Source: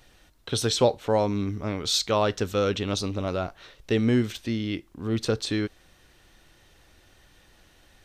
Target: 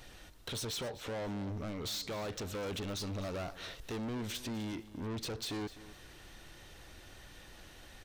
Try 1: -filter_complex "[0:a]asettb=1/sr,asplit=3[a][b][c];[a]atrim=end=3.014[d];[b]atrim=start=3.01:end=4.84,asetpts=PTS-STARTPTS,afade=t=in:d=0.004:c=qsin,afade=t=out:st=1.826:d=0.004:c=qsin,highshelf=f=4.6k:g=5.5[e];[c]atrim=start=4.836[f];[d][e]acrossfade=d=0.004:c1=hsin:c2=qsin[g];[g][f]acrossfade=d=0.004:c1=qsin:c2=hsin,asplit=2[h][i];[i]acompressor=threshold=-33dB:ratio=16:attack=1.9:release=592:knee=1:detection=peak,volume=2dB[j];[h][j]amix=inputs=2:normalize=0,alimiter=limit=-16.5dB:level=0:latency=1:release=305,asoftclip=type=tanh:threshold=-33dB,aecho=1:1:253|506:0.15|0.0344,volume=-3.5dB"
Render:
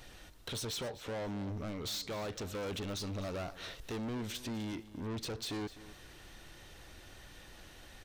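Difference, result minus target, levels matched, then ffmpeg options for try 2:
compressor: peak gain reduction +11 dB
-filter_complex "[0:a]asettb=1/sr,asplit=3[a][b][c];[a]atrim=end=3.014[d];[b]atrim=start=3.01:end=4.84,asetpts=PTS-STARTPTS,afade=t=in:d=0.004:c=qsin,afade=t=out:st=1.826:d=0.004:c=qsin,highshelf=f=4.6k:g=5.5[e];[c]atrim=start=4.836[f];[d][e]acrossfade=d=0.004:c1=hsin:c2=qsin[g];[g][f]acrossfade=d=0.004:c1=qsin:c2=hsin,asplit=2[h][i];[i]acompressor=threshold=-21dB:ratio=16:attack=1.9:release=592:knee=1:detection=peak,volume=2dB[j];[h][j]amix=inputs=2:normalize=0,alimiter=limit=-16.5dB:level=0:latency=1:release=305,asoftclip=type=tanh:threshold=-33dB,aecho=1:1:253|506:0.15|0.0344,volume=-3.5dB"

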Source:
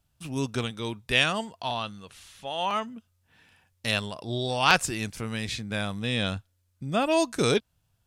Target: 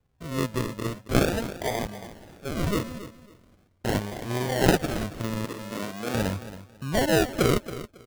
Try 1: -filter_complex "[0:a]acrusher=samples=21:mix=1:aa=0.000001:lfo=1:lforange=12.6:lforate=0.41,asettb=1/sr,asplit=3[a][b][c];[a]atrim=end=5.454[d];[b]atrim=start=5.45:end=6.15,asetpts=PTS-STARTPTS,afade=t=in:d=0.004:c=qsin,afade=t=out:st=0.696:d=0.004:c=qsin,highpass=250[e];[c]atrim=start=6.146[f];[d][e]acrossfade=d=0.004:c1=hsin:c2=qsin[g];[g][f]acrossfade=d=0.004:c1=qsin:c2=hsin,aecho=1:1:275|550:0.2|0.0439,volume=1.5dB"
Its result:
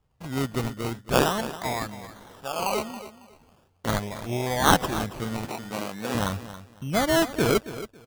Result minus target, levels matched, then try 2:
decimation with a swept rate: distortion -9 dB
-filter_complex "[0:a]acrusher=samples=45:mix=1:aa=0.000001:lfo=1:lforange=27:lforate=0.41,asettb=1/sr,asplit=3[a][b][c];[a]atrim=end=5.454[d];[b]atrim=start=5.45:end=6.15,asetpts=PTS-STARTPTS,afade=t=in:d=0.004:c=qsin,afade=t=out:st=0.696:d=0.004:c=qsin,highpass=250[e];[c]atrim=start=6.146[f];[d][e]acrossfade=d=0.004:c1=hsin:c2=qsin[g];[g][f]acrossfade=d=0.004:c1=qsin:c2=hsin,aecho=1:1:275|550:0.2|0.0439,volume=1.5dB"

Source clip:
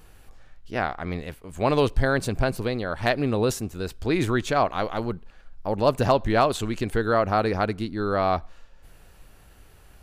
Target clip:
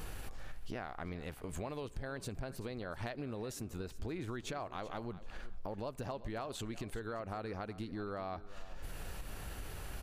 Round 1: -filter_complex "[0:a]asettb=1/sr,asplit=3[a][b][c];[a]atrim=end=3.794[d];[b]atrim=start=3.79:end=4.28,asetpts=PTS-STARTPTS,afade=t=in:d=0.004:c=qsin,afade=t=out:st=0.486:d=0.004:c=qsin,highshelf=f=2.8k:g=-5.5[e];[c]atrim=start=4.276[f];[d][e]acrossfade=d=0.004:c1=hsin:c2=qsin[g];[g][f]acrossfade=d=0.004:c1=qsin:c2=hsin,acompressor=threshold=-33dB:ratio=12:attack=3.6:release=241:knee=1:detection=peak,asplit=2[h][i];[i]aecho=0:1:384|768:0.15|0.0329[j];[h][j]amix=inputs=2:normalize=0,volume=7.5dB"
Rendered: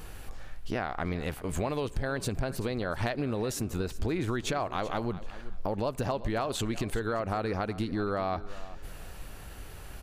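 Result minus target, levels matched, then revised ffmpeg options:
compressor: peak gain reduction -10.5 dB
-filter_complex "[0:a]asettb=1/sr,asplit=3[a][b][c];[a]atrim=end=3.794[d];[b]atrim=start=3.79:end=4.28,asetpts=PTS-STARTPTS,afade=t=in:d=0.004:c=qsin,afade=t=out:st=0.486:d=0.004:c=qsin,highshelf=f=2.8k:g=-5.5[e];[c]atrim=start=4.276[f];[d][e]acrossfade=d=0.004:c1=hsin:c2=qsin[g];[g][f]acrossfade=d=0.004:c1=qsin:c2=hsin,acompressor=threshold=-44.5dB:ratio=12:attack=3.6:release=241:knee=1:detection=peak,asplit=2[h][i];[i]aecho=0:1:384|768:0.15|0.0329[j];[h][j]amix=inputs=2:normalize=0,volume=7.5dB"

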